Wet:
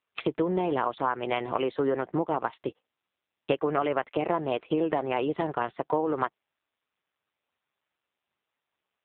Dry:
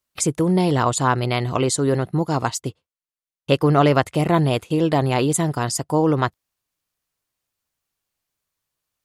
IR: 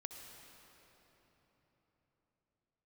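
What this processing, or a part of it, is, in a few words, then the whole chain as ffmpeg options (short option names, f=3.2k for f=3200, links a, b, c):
voicemail: -af "highpass=370,lowpass=2.9k,acompressor=threshold=-27dB:ratio=6,volume=4.5dB" -ar 8000 -c:a libopencore_amrnb -b:a 5900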